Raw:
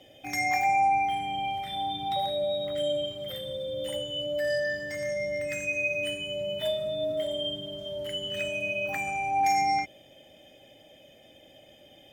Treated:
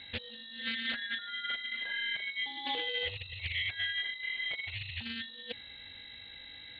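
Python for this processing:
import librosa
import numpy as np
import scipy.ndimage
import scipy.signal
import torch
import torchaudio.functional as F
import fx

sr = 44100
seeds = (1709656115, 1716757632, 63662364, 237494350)

y = scipy.signal.sosfilt(scipy.signal.butter(2, 45.0, 'highpass', fs=sr, output='sos'), x)
y = fx.tilt_eq(y, sr, slope=4.0)
y = fx.hum_notches(y, sr, base_hz=60, count=9)
y = fx.over_compress(y, sr, threshold_db=-33.0, ratio=-0.5)
y = fx.dmg_noise_colour(y, sr, seeds[0], colour='blue', level_db=-52.0)
y = fx.stretch_vocoder(y, sr, factor=0.56)
y = y * np.sin(2.0 * np.pi * 1300.0 * np.arange(len(y)) / sr)
y = fx.add_hum(y, sr, base_hz=50, snr_db=15)
y = fx.freq_invert(y, sr, carrier_hz=3900)
y = fx.doppler_dist(y, sr, depth_ms=0.37)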